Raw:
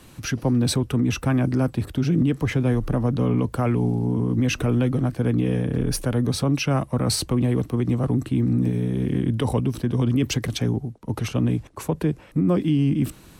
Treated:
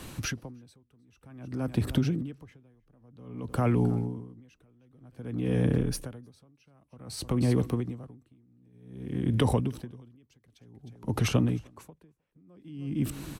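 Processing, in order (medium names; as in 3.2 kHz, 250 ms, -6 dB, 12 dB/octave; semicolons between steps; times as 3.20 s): compression, threshold -25 dBFS, peak gain reduction 9 dB; delay 310 ms -19 dB; logarithmic tremolo 0.53 Hz, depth 39 dB; trim +5 dB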